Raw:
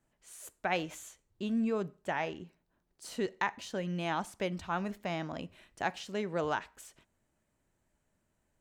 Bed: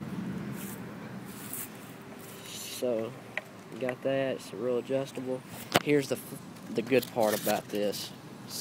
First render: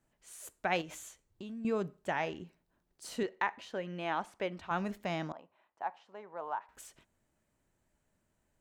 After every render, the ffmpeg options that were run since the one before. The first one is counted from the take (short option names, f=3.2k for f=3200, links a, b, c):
-filter_complex "[0:a]asettb=1/sr,asplit=3[a][b][c];[a]atrim=end=0.814[d];[b]atrim=start=0.81:end=1.65,asetpts=PTS-STARTPTS,afade=t=in:d=0.004:c=qsin,afade=t=out:st=0.836:d=0.004:c=qsin,acompressor=threshold=-41dB:ratio=6:attack=3.2:release=140:knee=1:detection=peak[e];[c]atrim=start=1.646[f];[d][e]acrossfade=d=0.004:c1=hsin:c2=qsin[g];[g][f]acrossfade=d=0.004:c1=qsin:c2=hsin,asettb=1/sr,asplit=3[h][i][j];[h]atrim=end=3.234[k];[i]atrim=start=3.23:end=4.71,asetpts=PTS-STARTPTS,afade=t=in:d=0.004:c=qsin,afade=t=out:st=1.476:d=0.004:c=qsin,bass=f=250:g=-10,treble=f=4k:g=-12[l];[j]atrim=start=4.706[m];[k][l]acrossfade=d=0.004:c1=hsin:c2=qsin[n];[n][m]acrossfade=d=0.004:c1=qsin:c2=hsin,asettb=1/sr,asplit=3[o][p][q];[o]atrim=end=5.324[r];[p]atrim=start=5.32:end=6.69,asetpts=PTS-STARTPTS,afade=t=in:d=0.004:c=qsin,afade=t=out:st=1.366:d=0.004:c=qsin,bandpass=f=900:t=q:w=2.9[s];[q]atrim=start=6.686[t];[r][s]acrossfade=d=0.004:c1=hsin:c2=qsin[u];[u][t]acrossfade=d=0.004:c1=qsin:c2=hsin"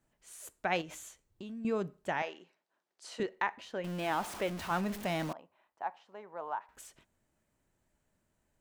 -filter_complex "[0:a]asettb=1/sr,asplit=3[a][b][c];[a]atrim=end=2.224[d];[b]atrim=start=2.22:end=3.2,asetpts=PTS-STARTPTS,afade=t=in:d=0.004:c=qsin,afade=t=out:st=0.976:d=0.004:c=qsin,highpass=530,lowpass=7k[e];[c]atrim=start=3.196[f];[d][e]acrossfade=d=0.004:c1=hsin:c2=qsin[g];[g][f]acrossfade=d=0.004:c1=qsin:c2=hsin,asettb=1/sr,asplit=3[h][i][j];[h]atrim=end=3.844[k];[i]atrim=start=3.84:end=5.33,asetpts=PTS-STARTPTS,afade=t=in:d=0.004:c=qsin,afade=t=out:st=1.486:d=0.004:c=qsin,aeval=exprs='val(0)+0.5*0.0119*sgn(val(0))':c=same[l];[j]atrim=start=5.326[m];[k][l]acrossfade=d=0.004:c1=hsin:c2=qsin[n];[n][m]acrossfade=d=0.004:c1=qsin:c2=hsin"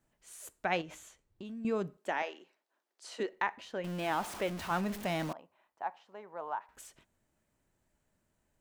-filter_complex "[0:a]asettb=1/sr,asplit=3[a][b][c];[a]atrim=end=0.754[d];[b]atrim=start=0.75:end=1.45,asetpts=PTS-STARTPTS,afade=t=in:d=0.004:c=qsin,afade=t=out:st=0.696:d=0.004:c=qsin,highshelf=f=5.7k:g=-8.5[e];[c]atrim=start=1.446[f];[d][e]acrossfade=d=0.004:c1=hsin:c2=qsin[g];[g][f]acrossfade=d=0.004:c1=qsin:c2=hsin,asettb=1/sr,asplit=3[h][i][j];[h]atrim=end=1.974[k];[i]atrim=start=1.97:end=3.33,asetpts=PTS-STARTPTS,afade=t=in:d=0.004:c=qsin,afade=t=out:st=1.356:d=0.004:c=qsin,highpass=f=230:w=0.5412,highpass=f=230:w=1.3066[l];[j]atrim=start=3.326[m];[k][l]acrossfade=d=0.004:c1=hsin:c2=qsin[n];[n][m]acrossfade=d=0.004:c1=qsin:c2=hsin"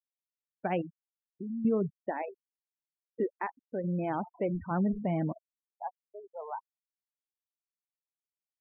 -af "afftfilt=real='re*gte(hypot(re,im),0.0282)':imag='im*gte(hypot(re,im),0.0282)':win_size=1024:overlap=0.75,tiltshelf=f=730:g=8.5"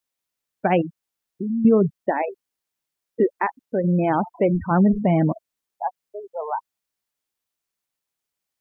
-af "volume=12dB"